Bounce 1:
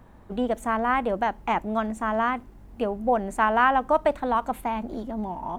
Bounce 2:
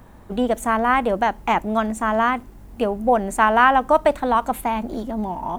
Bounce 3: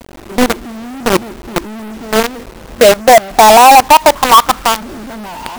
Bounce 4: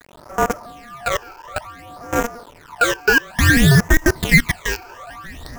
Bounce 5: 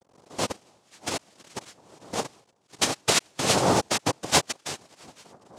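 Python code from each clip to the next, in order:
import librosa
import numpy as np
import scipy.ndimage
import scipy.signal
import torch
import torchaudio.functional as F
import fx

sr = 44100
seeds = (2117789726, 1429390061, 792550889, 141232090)

y1 = fx.high_shelf(x, sr, hz=5200.0, db=8.0)
y1 = F.gain(torch.from_numpy(y1), 5.0).numpy()
y2 = fx.filter_sweep_lowpass(y1, sr, from_hz=350.0, to_hz=1500.0, start_s=1.72, end_s=4.94, q=6.1)
y2 = fx.quant_companded(y2, sr, bits=2)
y2 = F.gain(torch.from_numpy(y2), -1.0).numpy()
y3 = y2 * np.sin(2.0 * np.pi * 950.0 * np.arange(len(y2)) / sr)
y3 = fx.phaser_stages(y3, sr, stages=12, low_hz=190.0, high_hz=3900.0, hz=0.57, feedback_pct=45)
y3 = F.gain(torch.from_numpy(y3), -4.5).numpy()
y4 = fx.dereverb_blind(y3, sr, rt60_s=1.7)
y4 = fx.env_lowpass(y4, sr, base_hz=690.0, full_db=-13.5)
y4 = fx.noise_vocoder(y4, sr, seeds[0], bands=2)
y4 = F.gain(torch.from_numpy(y4), -8.0).numpy()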